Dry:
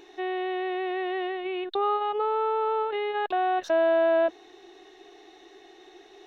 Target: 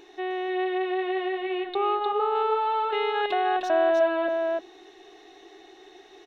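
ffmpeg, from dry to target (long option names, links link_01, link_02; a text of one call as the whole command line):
ffmpeg -i in.wav -filter_complex "[0:a]asettb=1/sr,asplit=3[link_01][link_02][link_03];[link_01]atrim=end=2.354[link_04];[link_02]atrim=start=2.35:end=3.34,asetpts=PTS-STARTPTS,afade=type=in:duration=0.004:curve=qsin,afade=type=out:start_time=0.986:duration=0.004:curve=qsin,highshelf=frequency=3000:gain=11.5[link_05];[link_03]atrim=start=3.336[link_06];[link_04][link_05]acrossfade=duration=0.004:curve1=hsin:curve2=qsin[link_07];[link_07][link_06]acrossfade=duration=0.004:curve1=qsin:curve2=hsin,asplit=2[link_08][link_09];[link_09]aecho=0:1:306:0.596[link_10];[link_08][link_10]amix=inputs=2:normalize=0" out.wav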